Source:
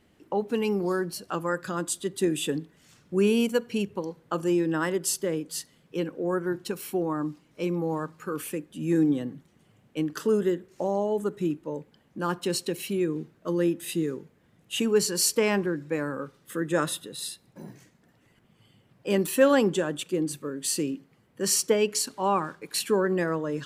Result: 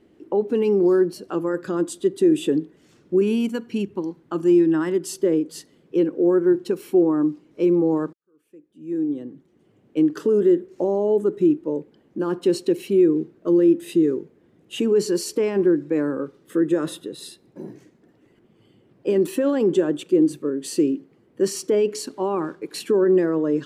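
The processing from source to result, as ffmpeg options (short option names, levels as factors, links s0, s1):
-filter_complex "[0:a]asettb=1/sr,asplit=3[s0][s1][s2];[s0]atrim=end=3.214[s3];[s1]atrim=start=3.21:end=5.13,asetpts=PTS-STARTPTS,afade=t=in:d=0.004:c=qsin,afade=t=out:st=1.916:d=0.004:c=qsin,equalizer=f=480:t=o:w=0.63:g=-11.5[s4];[s2]atrim=start=5.126[s5];[s3][s4]acrossfade=d=0.004:c1=hsin:c2=qsin[s6];[s6][s5]acrossfade=d=0.004:c1=qsin:c2=hsin,asplit=2[s7][s8];[s7]atrim=end=8.13,asetpts=PTS-STARTPTS,afade=t=out:st=8.126:d=0.004:c=hsin[s9];[s8]atrim=start=8.13,asetpts=PTS-STARTPTS,afade=t=in:d=1.85:c=qua[s10];[s9][s10]concat=n=2:v=0:a=1,highshelf=f=8300:g=-8,alimiter=limit=0.1:level=0:latency=1:release=20,equalizer=f=350:w=1.2:g=14.5,volume=0.841"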